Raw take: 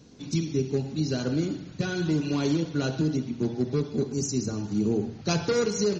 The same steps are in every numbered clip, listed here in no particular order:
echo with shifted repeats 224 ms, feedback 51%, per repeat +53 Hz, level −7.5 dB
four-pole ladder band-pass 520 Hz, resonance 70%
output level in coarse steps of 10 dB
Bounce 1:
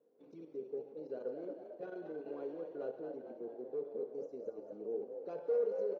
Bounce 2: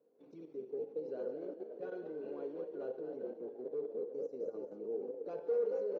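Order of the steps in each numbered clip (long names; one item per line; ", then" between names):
output level in coarse steps, then four-pole ladder band-pass, then echo with shifted repeats
echo with shifted repeats, then output level in coarse steps, then four-pole ladder band-pass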